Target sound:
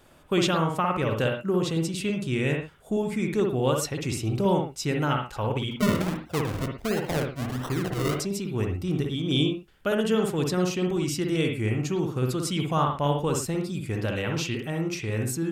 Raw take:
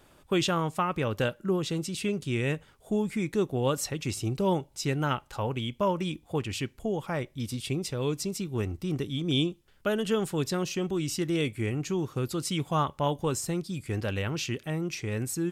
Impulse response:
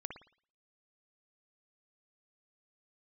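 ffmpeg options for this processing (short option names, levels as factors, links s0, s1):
-filter_complex "[0:a]asettb=1/sr,asplit=3[s0][s1][s2];[s0]atrim=end=5.714[s3];[s1]atrim=start=5.71:end=8.2,asetpts=PTS-STARTPTS,afade=t=in:d=0.004:c=qsin,afade=t=out:st=2.486:d=0.004:c=qsin,acrusher=samples=37:mix=1:aa=0.000001:lfo=1:lforange=37:lforate=1.4[s4];[s2]atrim=start=8.196[s5];[s3][s4]acrossfade=d=0.004:c1=hsin:c2=qsin[s6];[s6][s5]acrossfade=d=0.004:c1=qsin:c2=hsin[s7];[1:a]atrim=start_sample=2205,atrim=end_sample=6174[s8];[s7][s8]afir=irnorm=-1:irlink=0,volume=1.88"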